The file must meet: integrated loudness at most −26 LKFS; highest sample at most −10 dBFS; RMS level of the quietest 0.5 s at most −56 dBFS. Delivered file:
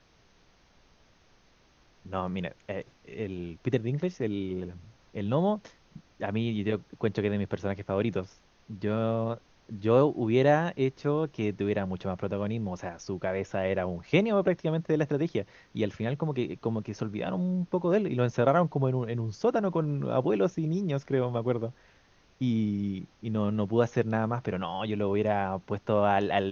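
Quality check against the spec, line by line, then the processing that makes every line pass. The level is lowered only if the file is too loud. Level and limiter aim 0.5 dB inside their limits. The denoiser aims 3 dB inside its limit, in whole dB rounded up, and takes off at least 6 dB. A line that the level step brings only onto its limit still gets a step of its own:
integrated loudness −29.5 LKFS: in spec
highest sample −9.5 dBFS: out of spec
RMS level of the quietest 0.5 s −62 dBFS: in spec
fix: brickwall limiter −10.5 dBFS

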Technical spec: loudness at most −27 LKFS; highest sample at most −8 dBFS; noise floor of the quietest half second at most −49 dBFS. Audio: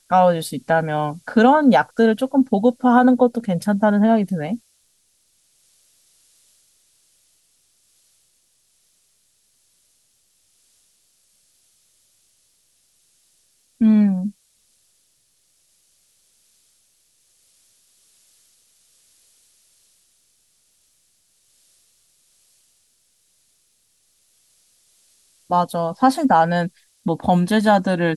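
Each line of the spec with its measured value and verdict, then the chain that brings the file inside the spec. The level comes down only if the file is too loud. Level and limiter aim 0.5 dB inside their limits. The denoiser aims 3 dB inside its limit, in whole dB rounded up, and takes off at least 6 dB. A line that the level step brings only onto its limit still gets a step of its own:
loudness −18.0 LKFS: out of spec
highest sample −5.0 dBFS: out of spec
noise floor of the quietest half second −64 dBFS: in spec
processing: level −9.5 dB

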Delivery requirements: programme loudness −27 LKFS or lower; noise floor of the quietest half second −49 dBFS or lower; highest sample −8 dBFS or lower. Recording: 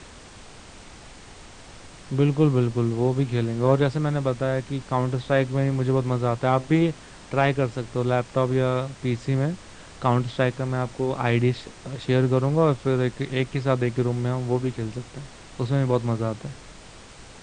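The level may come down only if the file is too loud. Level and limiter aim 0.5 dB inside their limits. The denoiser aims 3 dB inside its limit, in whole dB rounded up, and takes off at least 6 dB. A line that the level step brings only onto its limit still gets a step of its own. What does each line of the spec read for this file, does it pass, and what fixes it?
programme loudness −24.0 LKFS: out of spec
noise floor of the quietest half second −45 dBFS: out of spec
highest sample −5.5 dBFS: out of spec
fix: broadband denoise 6 dB, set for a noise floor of −45 dBFS
level −3.5 dB

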